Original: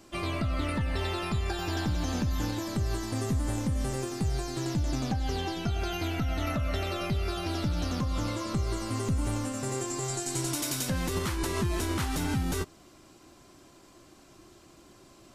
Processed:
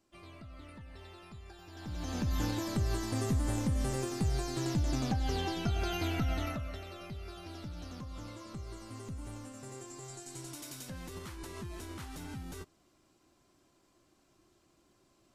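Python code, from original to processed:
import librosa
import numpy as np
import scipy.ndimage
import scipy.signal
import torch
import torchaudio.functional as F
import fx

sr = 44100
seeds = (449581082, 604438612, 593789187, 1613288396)

y = fx.gain(x, sr, db=fx.line((1.72, -20.0), (1.94, -10.0), (2.35, -2.0), (6.32, -2.0), (6.83, -14.0)))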